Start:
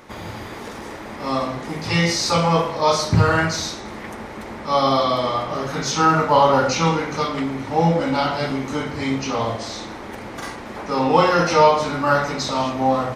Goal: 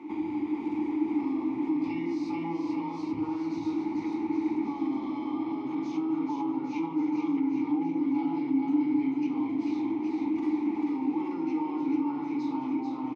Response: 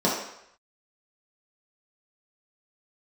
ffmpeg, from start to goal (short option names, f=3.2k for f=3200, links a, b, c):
-filter_complex "[0:a]equalizer=f=310:t=o:w=0.46:g=13.5,alimiter=limit=-19dB:level=0:latency=1:release=172,acrossover=split=160[a][b];[b]acompressor=threshold=-32dB:ratio=3[c];[a][c]amix=inputs=2:normalize=0,asplit=3[d][e][f];[d]bandpass=f=300:t=q:w=8,volume=0dB[g];[e]bandpass=f=870:t=q:w=8,volume=-6dB[h];[f]bandpass=f=2.24k:t=q:w=8,volume=-9dB[i];[g][h][i]amix=inputs=3:normalize=0,aecho=1:1:440|814|1132|1402|1632:0.631|0.398|0.251|0.158|0.1,volume=7dB"